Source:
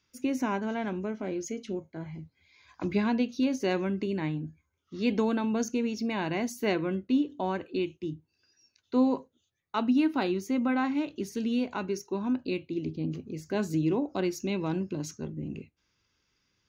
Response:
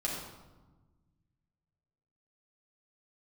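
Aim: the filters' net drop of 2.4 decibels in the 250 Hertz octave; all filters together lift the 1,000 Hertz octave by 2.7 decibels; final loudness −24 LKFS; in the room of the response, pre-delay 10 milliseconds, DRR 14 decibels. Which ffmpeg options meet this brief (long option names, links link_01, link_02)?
-filter_complex "[0:a]equalizer=frequency=250:width_type=o:gain=-3,equalizer=frequency=1000:width_type=o:gain=3.5,asplit=2[link_01][link_02];[1:a]atrim=start_sample=2205,adelay=10[link_03];[link_02][link_03]afir=irnorm=-1:irlink=0,volume=-18.5dB[link_04];[link_01][link_04]amix=inputs=2:normalize=0,volume=7.5dB"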